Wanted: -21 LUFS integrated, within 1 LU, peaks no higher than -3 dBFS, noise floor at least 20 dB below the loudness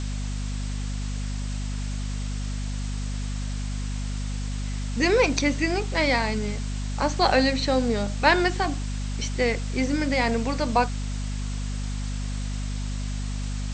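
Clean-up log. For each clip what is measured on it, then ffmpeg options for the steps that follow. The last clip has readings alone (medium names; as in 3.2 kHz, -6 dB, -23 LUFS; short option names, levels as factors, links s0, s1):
hum 50 Hz; highest harmonic 250 Hz; hum level -27 dBFS; noise floor -29 dBFS; noise floor target -47 dBFS; loudness -26.5 LUFS; peak level -4.0 dBFS; loudness target -21.0 LUFS
-> -af "bandreject=f=50:t=h:w=4,bandreject=f=100:t=h:w=4,bandreject=f=150:t=h:w=4,bandreject=f=200:t=h:w=4,bandreject=f=250:t=h:w=4"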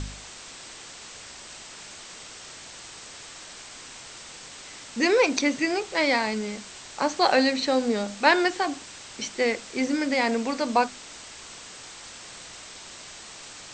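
hum not found; noise floor -44 dBFS; noise floor target -45 dBFS
-> -af "afftdn=nr=6:nf=-44"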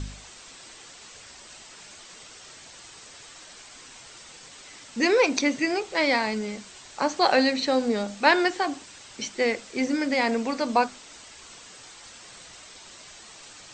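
noise floor -47 dBFS; loudness -24.5 LUFS; peak level -3.5 dBFS; loudness target -21.0 LUFS
-> -af "volume=1.5,alimiter=limit=0.708:level=0:latency=1"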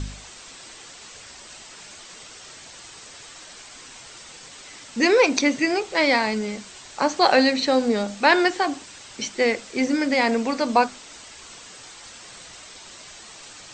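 loudness -21.0 LUFS; peak level -3.0 dBFS; noise floor -44 dBFS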